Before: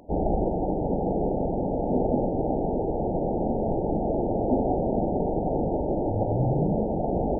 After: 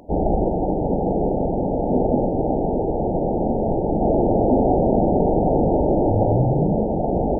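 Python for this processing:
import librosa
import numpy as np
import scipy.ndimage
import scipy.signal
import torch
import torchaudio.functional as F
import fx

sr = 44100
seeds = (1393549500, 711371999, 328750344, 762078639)

y = fx.env_flatten(x, sr, amount_pct=50, at=(4.01, 6.42))
y = y * librosa.db_to_amplitude(5.0)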